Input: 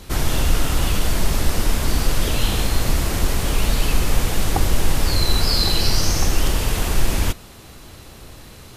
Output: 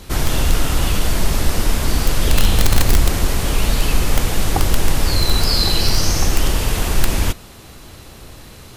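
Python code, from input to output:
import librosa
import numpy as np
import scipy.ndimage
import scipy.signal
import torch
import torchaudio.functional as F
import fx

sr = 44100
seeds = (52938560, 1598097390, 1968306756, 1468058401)

p1 = fx.low_shelf(x, sr, hz=61.0, db=8.5, at=(2.24, 3.13))
p2 = (np.mod(10.0 ** (5.5 / 20.0) * p1 + 1.0, 2.0) - 1.0) / 10.0 ** (5.5 / 20.0)
p3 = p1 + (p2 * 10.0 ** (-4.5 / 20.0))
y = p3 * 10.0 ** (-2.0 / 20.0)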